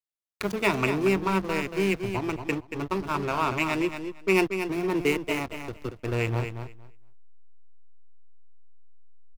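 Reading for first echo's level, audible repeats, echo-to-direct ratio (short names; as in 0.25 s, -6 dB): -8.0 dB, 2, -8.0 dB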